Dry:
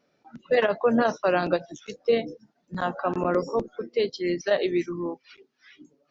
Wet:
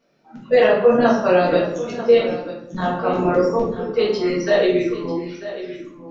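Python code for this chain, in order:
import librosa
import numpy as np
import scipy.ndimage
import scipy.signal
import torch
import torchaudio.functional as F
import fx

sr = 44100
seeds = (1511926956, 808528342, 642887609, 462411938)

y = x + 10.0 ** (-13.5 / 20.0) * np.pad(x, (int(943 * sr / 1000.0), 0))[:len(x)]
y = fx.room_shoebox(y, sr, seeds[0], volume_m3=140.0, walls='mixed', distance_m=1.6)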